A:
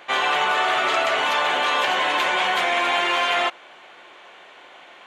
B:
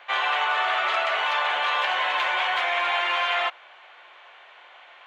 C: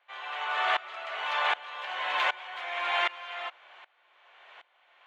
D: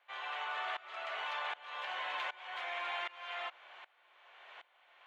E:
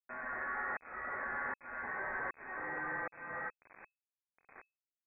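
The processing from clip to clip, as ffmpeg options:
ffmpeg -i in.wav -filter_complex "[0:a]highpass=180,acrossover=split=560 4400:gain=0.1 1 0.178[link_01][link_02][link_03];[link_01][link_02][link_03]amix=inputs=3:normalize=0,volume=-2dB" out.wav
ffmpeg -i in.wav -af "aeval=exprs='val(0)*pow(10,-22*if(lt(mod(-1.3*n/s,1),2*abs(-1.3)/1000),1-mod(-1.3*n/s,1)/(2*abs(-1.3)/1000),(mod(-1.3*n/s,1)-2*abs(-1.3)/1000)/(1-2*abs(-1.3)/1000))/20)':channel_layout=same" out.wav
ffmpeg -i in.wav -af "acompressor=threshold=-35dB:ratio=5,volume=-2dB" out.wav
ffmpeg -i in.wav -af "acrusher=bits=7:mix=0:aa=0.000001,lowpass=frequency=2200:width_type=q:width=0.5098,lowpass=frequency=2200:width_type=q:width=0.6013,lowpass=frequency=2200:width_type=q:width=0.9,lowpass=frequency=2200:width_type=q:width=2.563,afreqshift=-2600,volume=1dB" out.wav

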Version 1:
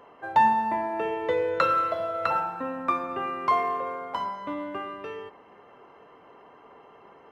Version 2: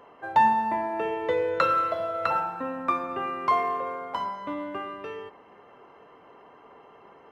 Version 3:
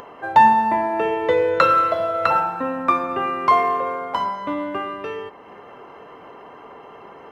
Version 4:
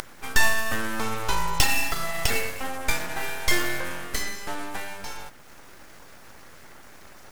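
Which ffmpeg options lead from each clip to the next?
ffmpeg -i in.wav -af anull out.wav
ffmpeg -i in.wav -af "acompressor=mode=upward:threshold=-43dB:ratio=2.5,volume=7.5dB" out.wav
ffmpeg -i in.wav -af "aexciter=amount=13.3:drive=8.3:freq=4400,aeval=exprs='abs(val(0))':channel_layout=same,volume=-4dB" out.wav

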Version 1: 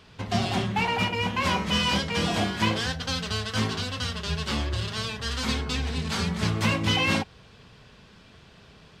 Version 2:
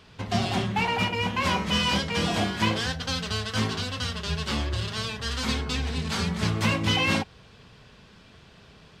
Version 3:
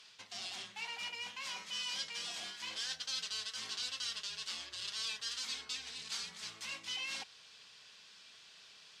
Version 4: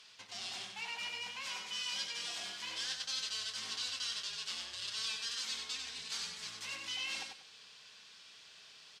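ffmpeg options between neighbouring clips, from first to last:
ffmpeg -i in.wav -af anull out.wav
ffmpeg -i in.wav -af "areverse,acompressor=threshold=-33dB:ratio=10,areverse,bandpass=frequency=6200:width_type=q:width=0.9:csg=0,volume=4dB" out.wav
ffmpeg -i in.wav -af "aecho=1:1:95|190|285:0.562|0.135|0.0324" out.wav

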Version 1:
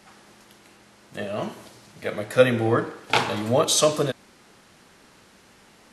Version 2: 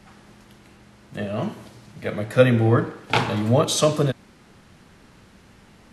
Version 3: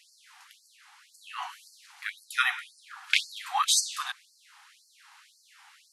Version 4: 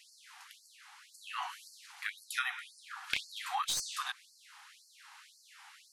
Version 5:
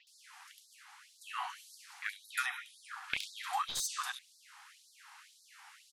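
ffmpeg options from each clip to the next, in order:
ffmpeg -i in.wav -filter_complex "[0:a]bass=frequency=250:gain=9,treble=frequency=4000:gain=-4,acrossover=split=100[link_01][link_02];[link_01]acompressor=mode=upward:threshold=-52dB:ratio=2.5[link_03];[link_03][link_02]amix=inputs=2:normalize=0" out.wav
ffmpeg -i in.wav -af "afftfilt=real='re*gte(b*sr/1024,690*pow(4300/690,0.5+0.5*sin(2*PI*1.9*pts/sr)))':imag='im*gte(b*sr/1024,690*pow(4300/690,0.5+0.5*sin(2*PI*1.9*pts/sr)))':win_size=1024:overlap=0.75,volume=1.5dB" out.wav
ffmpeg -i in.wav -filter_complex "[0:a]acrossover=split=1400|2900[link_01][link_02][link_03];[link_03]aeval=exprs='clip(val(0),-1,0.0596)':channel_layout=same[link_04];[link_01][link_02][link_04]amix=inputs=3:normalize=0,acompressor=threshold=-34dB:ratio=3" out.wav
ffmpeg -i in.wav -filter_complex "[0:a]acrossover=split=3700[link_01][link_02];[link_02]adelay=70[link_03];[link_01][link_03]amix=inputs=2:normalize=0" out.wav

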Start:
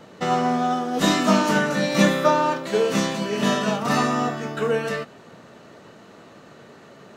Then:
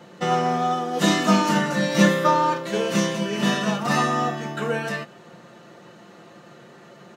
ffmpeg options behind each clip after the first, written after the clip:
ffmpeg -i in.wav -af "highpass=76,aecho=1:1:5.7:0.59,volume=-1.5dB" out.wav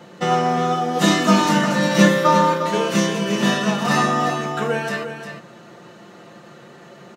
ffmpeg -i in.wav -af "aecho=1:1:353:0.355,volume=3dB" out.wav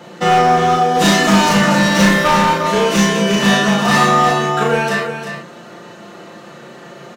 ffmpeg -i in.wav -filter_complex "[0:a]lowshelf=frequency=120:gain=-7,asoftclip=type=hard:threshold=-16dB,asplit=2[link_01][link_02];[link_02]adelay=35,volume=-2dB[link_03];[link_01][link_03]amix=inputs=2:normalize=0,volume=5.5dB" out.wav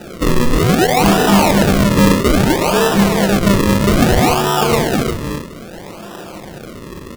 ffmpeg -i in.wav -filter_complex "[0:a]asplit=2[link_01][link_02];[link_02]alimiter=limit=-15dB:level=0:latency=1,volume=2dB[link_03];[link_01][link_03]amix=inputs=2:normalize=0,acrusher=samples=40:mix=1:aa=0.000001:lfo=1:lforange=40:lforate=0.61,volume=-2.5dB" out.wav

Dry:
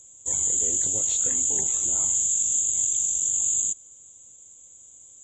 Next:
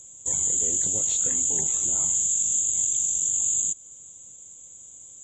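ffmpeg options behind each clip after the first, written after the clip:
ffmpeg -i in.wav -filter_complex "[0:a]equalizer=frequency=170:width_type=o:width=0.57:gain=5.5,asplit=2[link_01][link_02];[link_02]acompressor=threshold=-32dB:ratio=6,volume=0dB[link_03];[link_01][link_03]amix=inputs=2:normalize=0,volume=-2.5dB" out.wav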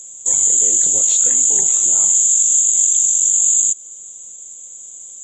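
ffmpeg -i in.wav -af "bass=frequency=250:gain=-10,treble=frequency=4000:gain=4,volume=6.5dB" out.wav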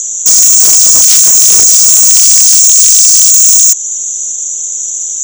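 ffmpeg -i in.wav -af "lowpass=frequency=5800:width_type=q:width=16,aeval=exprs='1.58*sin(PI/2*5.62*val(0)/1.58)':channel_layout=same,volume=-5dB" out.wav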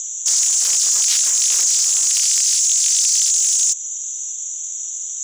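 ffmpeg -i in.wav -af "bandpass=frequency=3100:width_type=q:width=0.69:csg=0,volume=-6.5dB" out.wav

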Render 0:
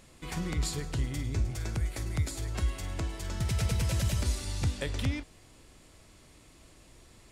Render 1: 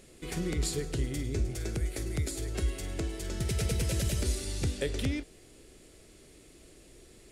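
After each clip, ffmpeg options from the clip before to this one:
ffmpeg -i in.wav -af "equalizer=frequency=100:width_type=o:width=0.67:gain=-4,equalizer=frequency=400:width_type=o:width=0.67:gain=9,equalizer=frequency=1000:width_type=o:width=0.67:gain=-9,equalizer=frequency=10000:width_type=o:width=0.67:gain=4" out.wav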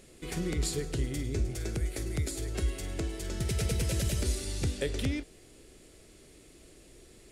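ffmpeg -i in.wav -af anull out.wav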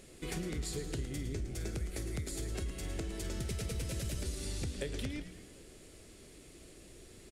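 ffmpeg -i in.wav -filter_complex "[0:a]acompressor=threshold=-35dB:ratio=6,asplit=2[link_01][link_02];[link_02]asplit=6[link_03][link_04][link_05][link_06][link_07][link_08];[link_03]adelay=111,afreqshift=-120,volume=-11dB[link_09];[link_04]adelay=222,afreqshift=-240,volume=-16.5dB[link_10];[link_05]adelay=333,afreqshift=-360,volume=-22dB[link_11];[link_06]adelay=444,afreqshift=-480,volume=-27.5dB[link_12];[link_07]adelay=555,afreqshift=-600,volume=-33.1dB[link_13];[link_08]adelay=666,afreqshift=-720,volume=-38.6dB[link_14];[link_09][link_10][link_11][link_12][link_13][link_14]amix=inputs=6:normalize=0[link_15];[link_01][link_15]amix=inputs=2:normalize=0" out.wav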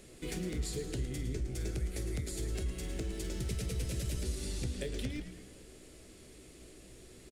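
ffmpeg -i in.wav -filter_complex "[0:a]acrossover=split=770|1300[link_01][link_02][link_03];[link_01]asplit=2[link_04][link_05];[link_05]adelay=16,volume=-5.5dB[link_06];[link_04][link_06]amix=inputs=2:normalize=0[link_07];[link_02]aeval=exprs='(mod(944*val(0)+1,2)-1)/944':channel_layout=same[link_08];[link_07][link_08][link_03]amix=inputs=3:normalize=0" out.wav

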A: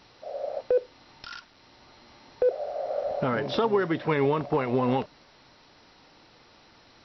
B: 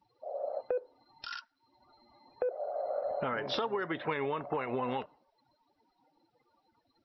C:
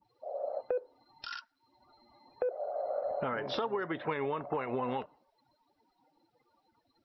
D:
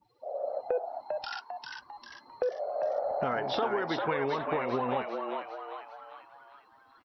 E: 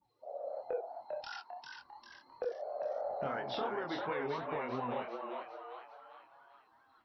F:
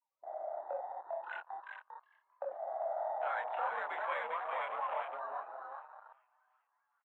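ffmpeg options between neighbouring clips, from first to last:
ffmpeg -i in.wav -af "afftdn=noise_reduction=30:noise_floor=-48,lowshelf=frequency=430:gain=-11.5,acompressor=threshold=-31dB:ratio=4,volume=1dB" out.wav
ffmpeg -i in.wav -af "adynamicequalizer=threshold=0.00562:dfrequency=1700:dqfactor=0.7:tfrequency=1700:tqfactor=0.7:attack=5:release=100:ratio=0.375:range=2:mode=cutabove:tftype=highshelf" out.wav
ffmpeg -i in.wav -filter_complex "[0:a]asplit=7[link_01][link_02][link_03][link_04][link_05][link_06][link_07];[link_02]adelay=398,afreqshift=110,volume=-4.5dB[link_08];[link_03]adelay=796,afreqshift=220,volume=-10.9dB[link_09];[link_04]adelay=1194,afreqshift=330,volume=-17.3dB[link_10];[link_05]adelay=1592,afreqshift=440,volume=-23.6dB[link_11];[link_06]adelay=1990,afreqshift=550,volume=-30dB[link_12];[link_07]adelay=2388,afreqshift=660,volume=-36.4dB[link_13];[link_01][link_08][link_09][link_10][link_11][link_12][link_13]amix=inputs=7:normalize=0,volume=2.5dB" out.wav
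ffmpeg -i in.wav -af "flanger=delay=22.5:depth=5.7:speed=2.9,volume=-4dB" out.wav
ffmpeg -i in.wav -filter_complex "[0:a]asplit=2[link_01][link_02];[link_02]adelay=207,lowpass=frequency=870:poles=1,volume=-13.5dB,asplit=2[link_03][link_04];[link_04]adelay=207,lowpass=frequency=870:poles=1,volume=0.47,asplit=2[link_05][link_06];[link_06]adelay=207,lowpass=frequency=870:poles=1,volume=0.47,asplit=2[link_07][link_08];[link_08]adelay=207,lowpass=frequency=870:poles=1,volume=0.47,asplit=2[link_09][link_10];[link_10]adelay=207,lowpass=frequency=870:poles=1,volume=0.47[link_11];[link_01][link_03][link_05][link_07][link_09][link_11]amix=inputs=6:normalize=0,highpass=frequency=580:width_type=q:width=0.5412,highpass=frequency=580:width_type=q:width=1.307,lowpass=frequency=2700:width_type=q:width=0.5176,lowpass=frequency=2700:width_type=q:width=0.7071,lowpass=frequency=2700:width_type=q:width=1.932,afreqshift=62,afwtdn=0.00447,volume=3dB" out.wav

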